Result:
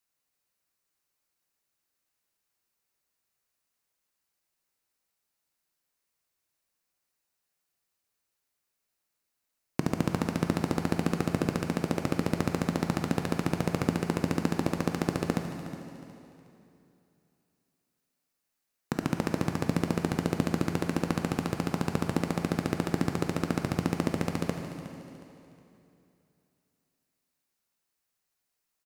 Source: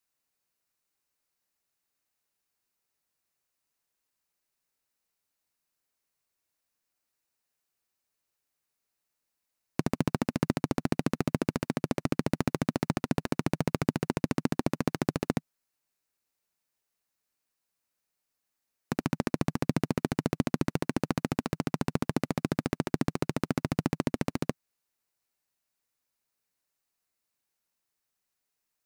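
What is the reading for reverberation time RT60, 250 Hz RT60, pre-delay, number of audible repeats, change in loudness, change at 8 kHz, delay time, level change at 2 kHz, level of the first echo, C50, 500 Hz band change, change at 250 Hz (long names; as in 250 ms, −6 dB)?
2.8 s, 2.8 s, 7 ms, 3, +1.0 dB, +1.5 dB, 364 ms, +1.5 dB, −14.5 dB, 5.0 dB, +1.0 dB, +0.5 dB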